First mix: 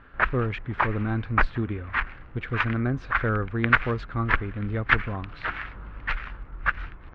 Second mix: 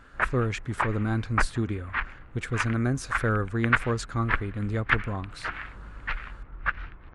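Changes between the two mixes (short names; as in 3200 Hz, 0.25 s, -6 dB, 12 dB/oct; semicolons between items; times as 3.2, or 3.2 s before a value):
speech: remove LPF 3300 Hz 24 dB/oct; background -3.0 dB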